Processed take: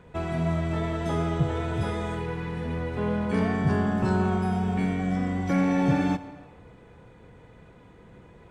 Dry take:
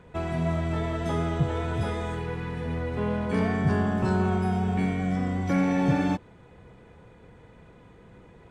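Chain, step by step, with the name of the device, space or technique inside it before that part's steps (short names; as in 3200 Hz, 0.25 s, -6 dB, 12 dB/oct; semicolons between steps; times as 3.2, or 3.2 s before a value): compressed reverb return (on a send at -9.5 dB: reverb RT60 1.2 s, pre-delay 51 ms + compressor, threshold -27 dBFS, peak gain reduction 9 dB)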